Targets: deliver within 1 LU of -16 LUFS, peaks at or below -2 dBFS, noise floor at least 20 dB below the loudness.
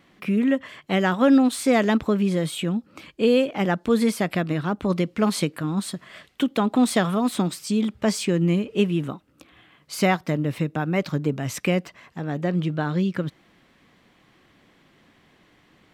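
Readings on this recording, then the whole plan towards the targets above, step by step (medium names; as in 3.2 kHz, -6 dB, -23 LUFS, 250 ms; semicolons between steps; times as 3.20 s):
loudness -23.5 LUFS; peak level -8.0 dBFS; loudness target -16.0 LUFS
-> trim +7.5 dB; peak limiter -2 dBFS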